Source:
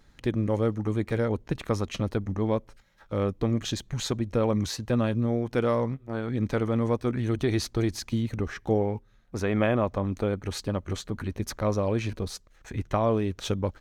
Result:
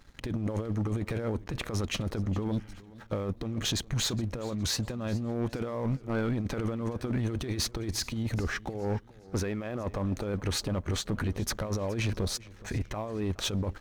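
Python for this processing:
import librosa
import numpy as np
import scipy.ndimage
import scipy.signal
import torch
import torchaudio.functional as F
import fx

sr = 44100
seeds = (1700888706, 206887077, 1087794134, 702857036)

y = fx.spec_repair(x, sr, seeds[0], start_s=2.54, length_s=0.21, low_hz=340.0, high_hz=3400.0, source='after')
y = fx.over_compress(y, sr, threshold_db=-29.0, ratio=-0.5)
y = fx.leveller(y, sr, passes=2)
y = fx.echo_warbled(y, sr, ms=417, feedback_pct=36, rate_hz=2.8, cents=93, wet_db=-20)
y = F.gain(torch.from_numpy(y), -6.0).numpy()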